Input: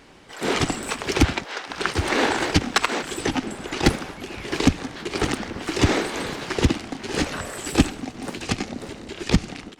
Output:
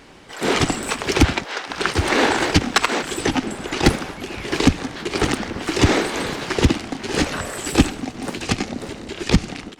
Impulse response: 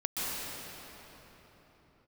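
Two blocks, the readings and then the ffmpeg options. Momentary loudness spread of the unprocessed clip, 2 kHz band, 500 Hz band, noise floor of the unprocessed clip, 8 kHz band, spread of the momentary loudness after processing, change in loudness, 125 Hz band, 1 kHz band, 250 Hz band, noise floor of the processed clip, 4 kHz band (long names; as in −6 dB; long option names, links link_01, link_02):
11 LU, +3.5 dB, +3.5 dB, −41 dBFS, +3.5 dB, 11 LU, +3.5 dB, +3.0 dB, +3.5 dB, +3.0 dB, −37 dBFS, +3.5 dB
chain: -af "acontrast=25,volume=-1dB"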